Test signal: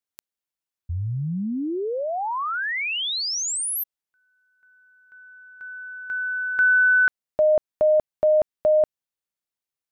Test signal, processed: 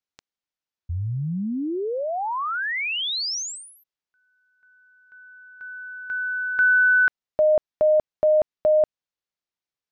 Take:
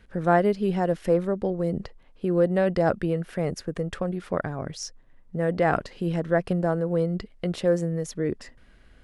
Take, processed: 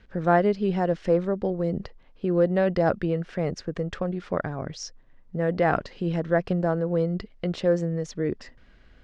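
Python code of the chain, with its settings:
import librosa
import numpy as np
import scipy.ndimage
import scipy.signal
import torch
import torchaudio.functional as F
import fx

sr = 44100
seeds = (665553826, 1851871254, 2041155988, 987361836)

y = scipy.signal.sosfilt(scipy.signal.butter(4, 6300.0, 'lowpass', fs=sr, output='sos'), x)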